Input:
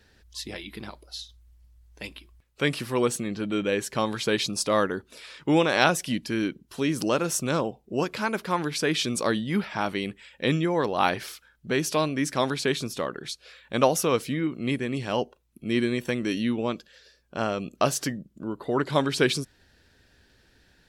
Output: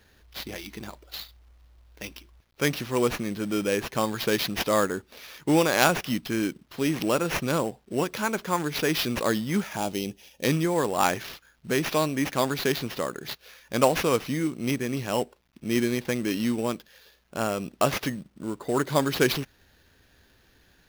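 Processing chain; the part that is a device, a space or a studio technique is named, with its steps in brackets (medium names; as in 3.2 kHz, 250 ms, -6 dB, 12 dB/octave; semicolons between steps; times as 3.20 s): early companding sampler (sample-rate reducer 8.3 kHz, jitter 0%; companded quantiser 6-bit); 9.76–10.44 s: high-order bell 1.5 kHz -10.5 dB 1.3 oct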